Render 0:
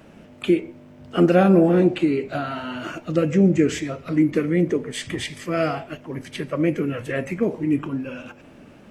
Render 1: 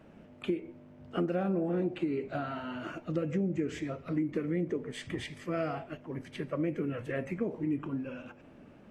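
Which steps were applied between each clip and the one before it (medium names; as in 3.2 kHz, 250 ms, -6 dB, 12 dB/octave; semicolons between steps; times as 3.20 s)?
treble shelf 3.2 kHz -10 dB; compression 6:1, threshold -20 dBFS, peak gain reduction 9 dB; trim -7.5 dB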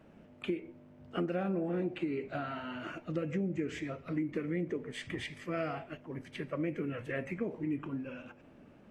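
dynamic bell 2.2 kHz, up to +5 dB, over -53 dBFS, Q 1.2; trim -3 dB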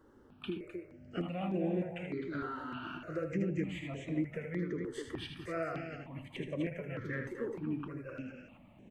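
on a send: loudspeakers at several distances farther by 27 m -7 dB, 88 m -6 dB; on the sum: stepped phaser 3.3 Hz 660–4800 Hz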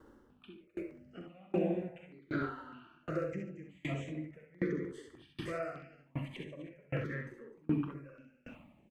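on a send: early reflections 44 ms -8 dB, 65 ms -3 dB; on the sum: sawtooth tremolo in dB decaying 1.3 Hz, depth 31 dB; trim +5 dB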